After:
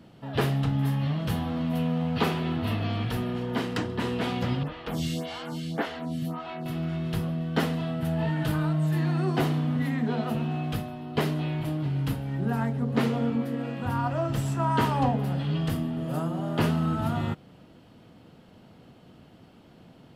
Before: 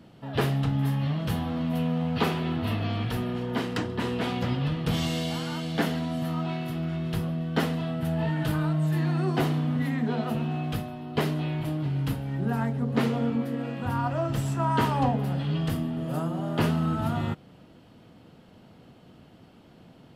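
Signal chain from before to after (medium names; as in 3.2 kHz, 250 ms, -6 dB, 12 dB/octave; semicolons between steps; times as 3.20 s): 4.63–6.66 s: lamp-driven phase shifter 1.8 Hz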